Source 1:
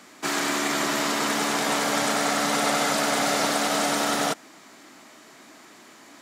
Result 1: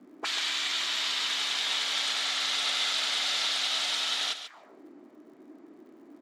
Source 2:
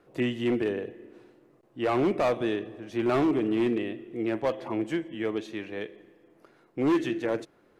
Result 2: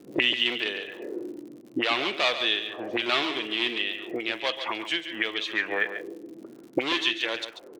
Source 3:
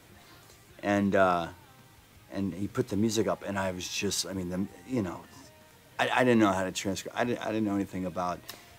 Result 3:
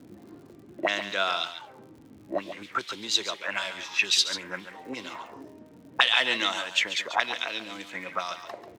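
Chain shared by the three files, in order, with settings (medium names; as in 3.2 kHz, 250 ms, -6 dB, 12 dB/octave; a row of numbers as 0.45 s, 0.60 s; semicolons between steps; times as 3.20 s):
auto-wah 230–3500 Hz, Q 2.9, up, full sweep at -27.5 dBFS; delay 140 ms -10.5 dB; crackle 89 per s -62 dBFS; normalise loudness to -27 LUFS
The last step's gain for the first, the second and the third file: +5.5 dB, +20.0 dB, +16.0 dB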